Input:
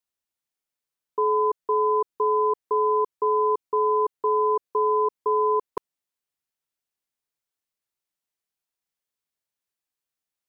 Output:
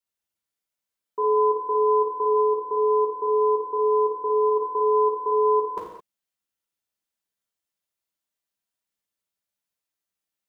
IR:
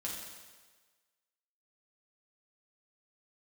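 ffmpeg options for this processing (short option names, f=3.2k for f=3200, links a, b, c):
-filter_complex "[0:a]asplit=3[a][b][c];[a]afade=t=out:st=2.31:d=0.02[d];[b]lowpass=1.1k,afade=t=in:st=2.31:d=0.02,afade=t=out:st=4.49:d=0.02[e];[c]afade=t=in:st=4.49:d=0.02[f];[d][e][f]amix=inputs=3:normalize=0[g];[1:a]atrim=start_sample=2205,afade=t=out:st=0.27:d=0.01,atrim=end_sample=12348[h];[g][h]afir=irnorm=-1:irlink=0"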